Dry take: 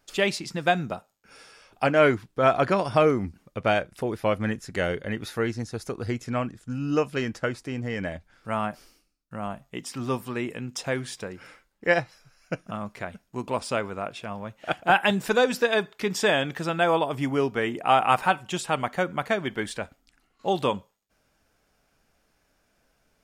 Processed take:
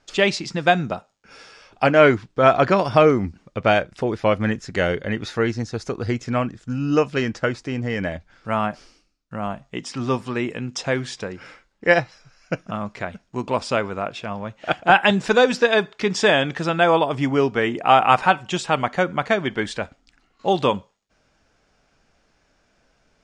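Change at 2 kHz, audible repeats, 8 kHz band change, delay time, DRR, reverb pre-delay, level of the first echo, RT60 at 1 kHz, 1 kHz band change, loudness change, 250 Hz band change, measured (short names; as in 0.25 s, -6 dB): +5.5 dB, none, +2.0 dB, none, none, none, none, none, +5.5 dB, +5.5 dB, +5.5 dB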